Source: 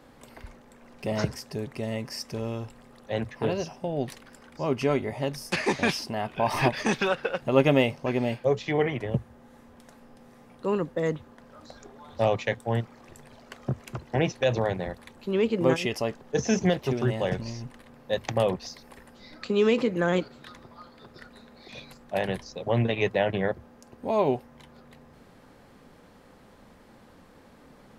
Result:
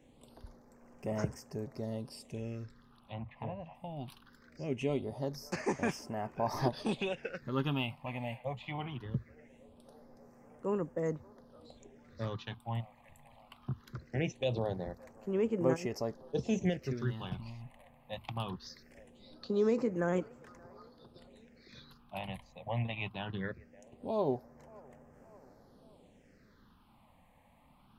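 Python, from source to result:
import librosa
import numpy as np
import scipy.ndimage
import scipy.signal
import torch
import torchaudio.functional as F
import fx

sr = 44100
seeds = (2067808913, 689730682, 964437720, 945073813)

y = fx.echo_wet_bandpass(x, sr, ms=576, feedback_pct=65, hz=980.0, wet_db=-23)
y = fx.env_lowpass_down(y, sr, base_hz=1300.0, full_db=-24.5, at=(2.63, 3.75))
y = fx.phaser_stages(y, sr, stages=6, low_hz=380.0, high_hz=3900.0, hz=0.21, feedback_pct=20)
y = F.gain(torch.from_numpy(y), -7.5).numpy()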